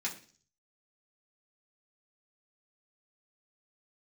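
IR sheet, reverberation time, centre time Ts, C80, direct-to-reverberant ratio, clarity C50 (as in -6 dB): 0.45 s, 15 ms, 16.0 dB, -5.0 dB, 11.5 dB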